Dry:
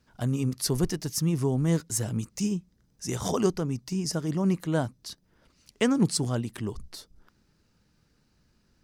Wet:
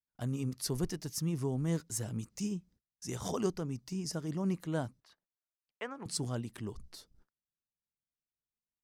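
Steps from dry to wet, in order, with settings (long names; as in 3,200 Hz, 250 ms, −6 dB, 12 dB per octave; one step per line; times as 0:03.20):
noise gate −53 dBFS, range −31 dB
0:05.00–0:06.06: three-way crossover with the lows and the highs turned down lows −20 dB, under 550 Hz, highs −21 dB, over 2,500 Hz
level −8 dB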